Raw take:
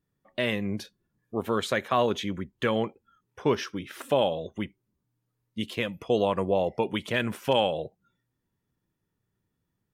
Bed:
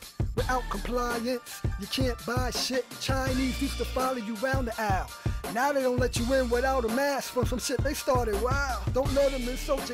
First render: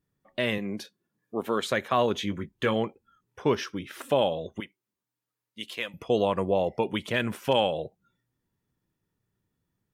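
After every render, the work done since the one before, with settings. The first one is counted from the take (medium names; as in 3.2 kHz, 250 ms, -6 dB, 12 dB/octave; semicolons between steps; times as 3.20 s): 0.58–1.64 s: high-pass 190 Hz; 2.15–2.74 s: doubling 19 ms -9 dB; 4.60–5.94 s: high-pass 980 Hz 6 dB/octave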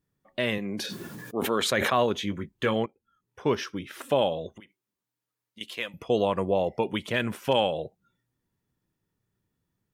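0.72–2.04 s: decay stretcher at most 21 dB/s; 2.86–3.57 s: fade in, from -15.5 dB; 4.54–5.61 s: compression 5:1, threshold -44 dBFS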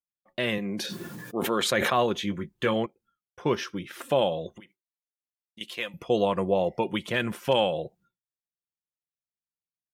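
expander -55 dBFS; comb 5.7 ms, depth 30%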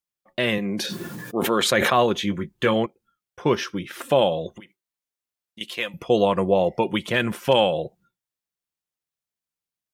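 trim +5 dB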